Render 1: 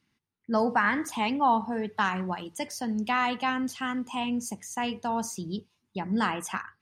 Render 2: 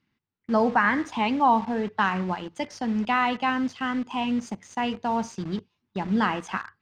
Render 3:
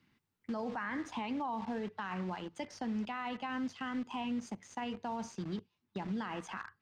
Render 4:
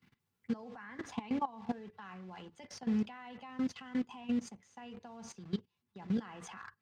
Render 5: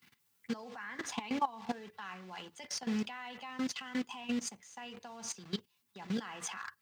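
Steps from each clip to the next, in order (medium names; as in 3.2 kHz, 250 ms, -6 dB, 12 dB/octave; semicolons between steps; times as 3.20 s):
in parallel at -5 dB: word length cut 6-bit, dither none; on the sum: distance through air 150 m
peak limiter -21.5 dBFS, peak gain reduction 11.5 dB; three bands compressed up and down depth 40%; trim -8.5 dB
level held to a coarse grid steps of 18 dB; comb of notches 310 Hz; trim +6.5 dB
tilt EQ +3 dB/octave; trim +4 dB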